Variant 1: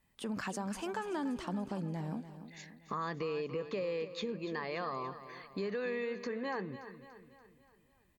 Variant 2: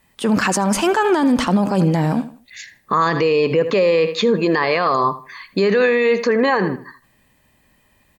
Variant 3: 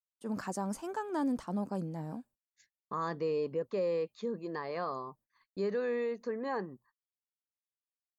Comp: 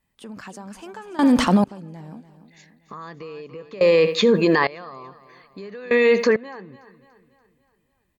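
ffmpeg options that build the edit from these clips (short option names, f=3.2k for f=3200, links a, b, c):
-filter_complex "[1:a]asplit=3[a][b][c];[0:a]asplit=4[d][e][f][g];[d]atrim=end=1.192[h];[a]atrim=start=1.188:end=1.642[i];[e]atrim=start=1.638:end=3.812[j];[b]atrim=start=3.808:end=4.672[k];[f]atrim=start=4.668:end=5.912[l];[c]atrim=start=5.908:end=6.362[m];[g]atrim=start=6.358[n];[h][i]acrossfade=d=0.004:c1=hsin:c2=hsin[o];[o][j]acrossfade=d=0.004:c1=hsin:c2=hsin[p];[p][k]acrossfade=d=0.004:c1=hsin:c2=hsin[q];[q][l]acrossfade=d=0.004:c1=hsin:c2=hsin[r];[r][m]acrossfade=d=0.004:c1=hsin:c2=hsin[s];[s][n]acrossfade=d=0.004:c1=hsin:c2=hsin"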